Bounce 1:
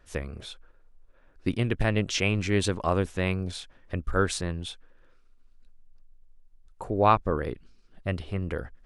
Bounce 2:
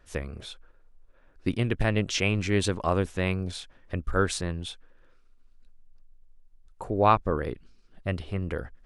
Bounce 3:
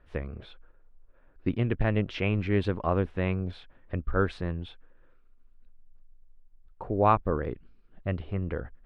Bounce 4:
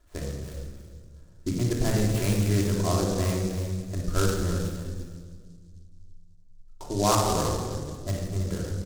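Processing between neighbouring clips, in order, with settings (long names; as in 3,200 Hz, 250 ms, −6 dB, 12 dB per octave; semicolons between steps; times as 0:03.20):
no processing that can be heard
high-frequency loss of the air 420 metres
single-tap delay 327 ms −11 dB; rectangular room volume 2,000 cubic metres, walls mixed, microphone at 3 metres; short delay modulated by noise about 5,600 Hz, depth 0.082 ms; level −4.5 dB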